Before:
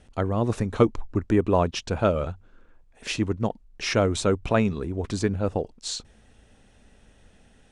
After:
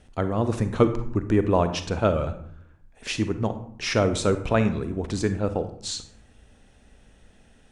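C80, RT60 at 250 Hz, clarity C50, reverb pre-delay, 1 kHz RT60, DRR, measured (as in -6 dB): 14.0 dB, 1.0 s, 11.0 dB, 35 ms, 0.65 s, 9.5 dB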